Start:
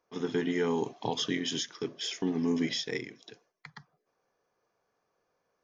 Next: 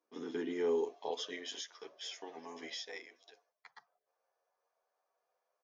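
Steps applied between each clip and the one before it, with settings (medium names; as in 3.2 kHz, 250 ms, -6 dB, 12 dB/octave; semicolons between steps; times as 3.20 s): high-pass sweep 270 Hz -> 640 Hz, 0.03–1.59 s; endless flanger 10.3 ms +0.42 Hz; trim -6.5 dB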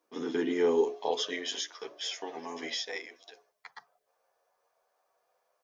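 hum notches 60/120/180/240/300/360/420 Hz; trim +8.5 dB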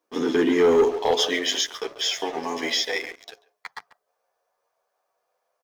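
speakerphone echo 140 ms, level -12 dB; waveshaping leveller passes 2; trim +3.5 dB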